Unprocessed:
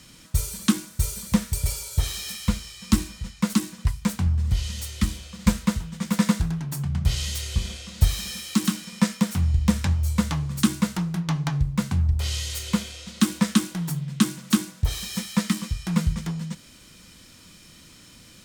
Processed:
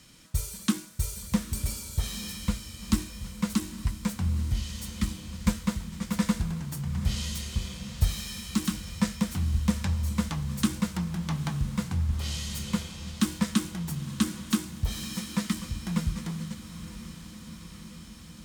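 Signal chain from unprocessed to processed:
feedback delay with all-pass diffusion 893 ms, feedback 69%, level −13 dB
level −5.5 dB

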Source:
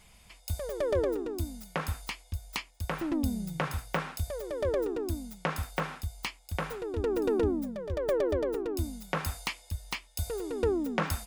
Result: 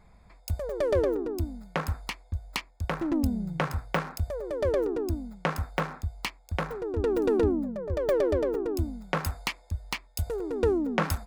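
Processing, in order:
adaptive Wiener filter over 15 samples
level +3.5 dB

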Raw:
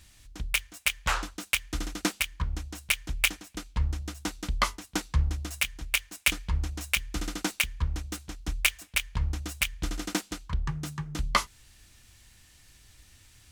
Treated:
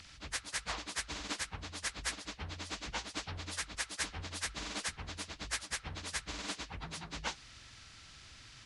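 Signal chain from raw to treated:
partials spread apart or drawn together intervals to 85%
time stretch by phase vocoder 0.64×
every bin compressed towards the loudest bin 2 to 1
level −5 dB

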